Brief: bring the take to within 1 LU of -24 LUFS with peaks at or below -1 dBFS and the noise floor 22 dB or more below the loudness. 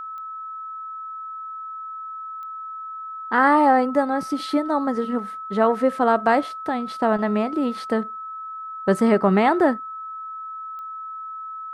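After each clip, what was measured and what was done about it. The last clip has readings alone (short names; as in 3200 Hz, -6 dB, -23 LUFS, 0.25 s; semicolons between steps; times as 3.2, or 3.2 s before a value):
clicks 3; steady tone 1300 Hz; tone level -31 dBFS; loudness -23.5 LUFS; peak -5.5 dBFS; loudness target -24.0 LUFS
-> de-click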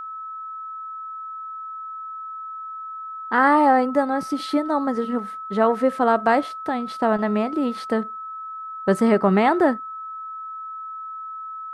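clicks 0; steady tone 1300 Hz; tone level -31 dBFS
-> notch 1300 Hz, Q 30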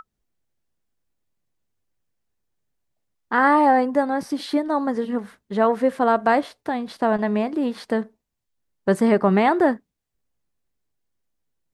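steady tone none; loudness -21.0 LUFS; peak -5.5 dBFS; loudness target -24.0 LUFS
-> gain -3 dB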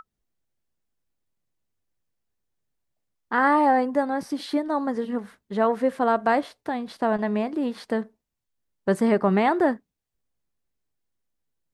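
loudness -24.0 LUFS; peak -8.5 dBFS; noise floor -83 dBFS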